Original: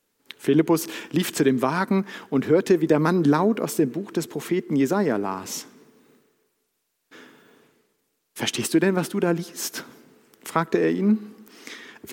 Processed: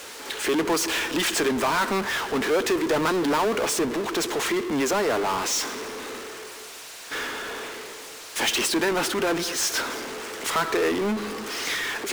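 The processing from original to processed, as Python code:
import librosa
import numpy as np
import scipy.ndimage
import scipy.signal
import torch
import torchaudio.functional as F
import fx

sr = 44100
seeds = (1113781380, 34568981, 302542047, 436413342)

y = fx.bandpass_edges(x, sr, low_hz=520.0, high_hz=7800.0)
y = fx.power_curve(y, sr, exponent=0.35)
y = y * 10.0 ** (-7.0 / 20.0)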